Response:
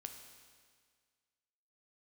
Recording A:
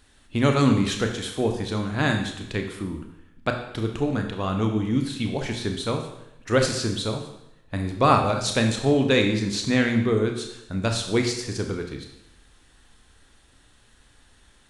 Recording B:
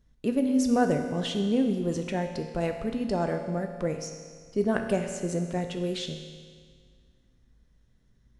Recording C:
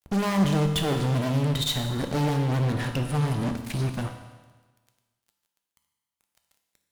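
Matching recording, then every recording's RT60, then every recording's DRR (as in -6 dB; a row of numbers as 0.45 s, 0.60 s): B; 0.85 s, 1.8 s, 1.3 s; 3.5 dB, 5.0 dB, 4.5 dB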